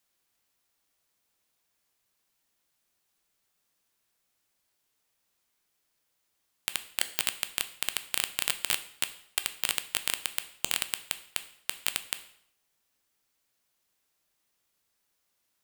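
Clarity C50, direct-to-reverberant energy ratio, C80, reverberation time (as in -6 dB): 14.5 dB, 10.0 dB, 17.0 dB, 0.65 s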